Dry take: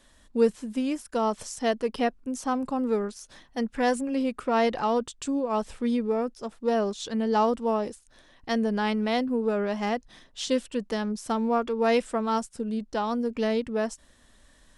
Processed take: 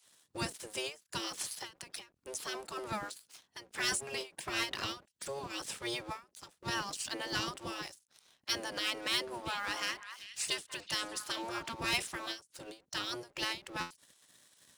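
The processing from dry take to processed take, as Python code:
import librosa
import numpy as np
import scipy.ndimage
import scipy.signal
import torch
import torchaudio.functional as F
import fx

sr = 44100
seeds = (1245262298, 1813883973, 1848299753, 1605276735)

y = fx.octave_divider(x, sr, octaves=1, level_db=-2.0)
y = fx.spec_gate(y, sr, threshold_db=-15, keep='weak')
y = scipy.signal.sosfilt(scipy.signal.butter(2, 81.0, 'highpass', fs=sr, output='sos'), y)
y = fx.low_shelf(y, sr, hz=160.0, db=3.0)
y = fx.leveller(y, sr, passes=2)
y = fx.high_shelf(y, sr, hz=2400.0, db=11.0)
y = fx.echo_stepped(y, sr, ms=193, hz=1200.0, octaves=1.4, feedback_pct=70, wet_db=-7.5, at=(9.45, 11.72), fade=0.02)
y = fx.buffer_glitch(y, sr, at_s=(13.8,), block=512, repeats=8)
y = fx.end_taper(y, sr, db_per_s=210.0)
y = y * 10.0 ** (-8.0 / 20.0)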